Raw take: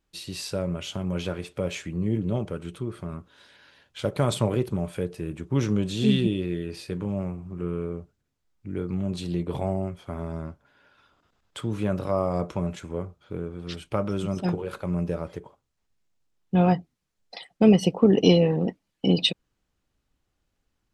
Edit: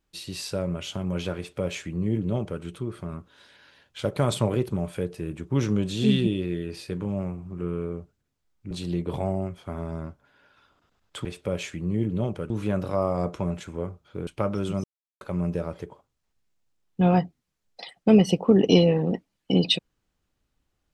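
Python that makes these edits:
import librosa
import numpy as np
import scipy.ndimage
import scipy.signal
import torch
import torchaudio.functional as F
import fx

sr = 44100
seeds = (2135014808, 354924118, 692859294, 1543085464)

y = fx.edit(x, sr, fx.duplicate(start_s=1.37, length_s=1.25, to_s=11.66),
    fx.cut(start_s=8.71, length_s=0.41),
    fx.cut(start_s=13.43, length_s=0.38),
    fx.silence(start_s=14.38, length_s=0.37), tone=tone)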